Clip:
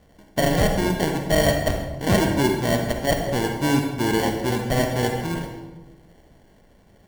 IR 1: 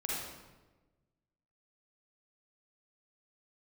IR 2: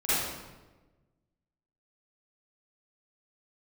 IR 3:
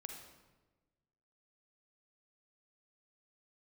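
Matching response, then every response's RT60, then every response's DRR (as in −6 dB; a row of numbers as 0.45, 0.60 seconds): 3; 1.2, 1.2, 1.2 seconds; −5.5, −15.0, 3.0 decibels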